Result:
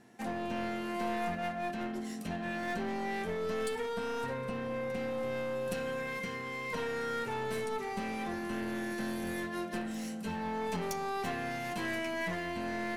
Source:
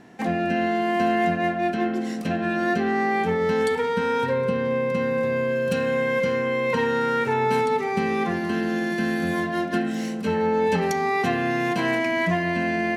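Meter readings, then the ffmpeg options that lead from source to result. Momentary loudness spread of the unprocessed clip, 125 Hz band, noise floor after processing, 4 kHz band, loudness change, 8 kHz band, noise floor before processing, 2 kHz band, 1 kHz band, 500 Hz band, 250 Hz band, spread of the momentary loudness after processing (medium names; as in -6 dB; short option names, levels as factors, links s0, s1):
3 LU, -13.0 dB, -40 dBFS, -9.0 dB, -12.5 dB, -5.0 dB, -28 dBFS, -12.0 dB, -12.5 dB, -13.5 dB, -12.5 dB, 3 LU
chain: -af "equalizer=f=11000:t=o:w=1.4:g=11,flanger=delay=8.7:depth=1.8:regen=-34:speed=0.23:shape=sinusoidal,aeval=exprs='clip(val(0),-1,0.0398)':c=same,volume=0.422"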